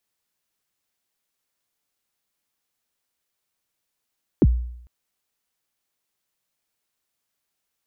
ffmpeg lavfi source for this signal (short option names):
-f lavfi -i "aevalsrc='0.355*pow(10,-3*t/0.72)*sin(2*PI*(420*0.041/log(60/420)*(exp(log(60/420)*min(t,0.041)/0.041)-1)+60*max(t-0.041,0)))':d=0.45:s=44100"